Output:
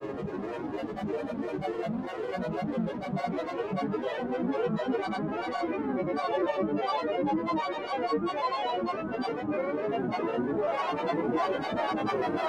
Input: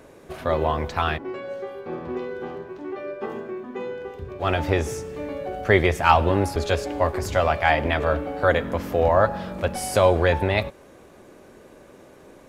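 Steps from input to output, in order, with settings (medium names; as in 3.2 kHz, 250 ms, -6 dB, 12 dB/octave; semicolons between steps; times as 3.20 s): Paulstretch 24×, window 0.50 s, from 2.72 s; granulator, pitch spread up and down by 12 st; trim +3 dB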